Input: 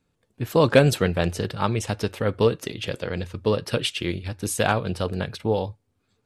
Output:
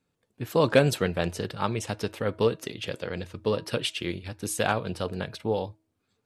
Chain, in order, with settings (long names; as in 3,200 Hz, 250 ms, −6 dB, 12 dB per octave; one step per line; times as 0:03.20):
low-shelf EQ 68 Hz −11.5 dB
hum removal 319.9 Hz, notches 3
level −3.5 dB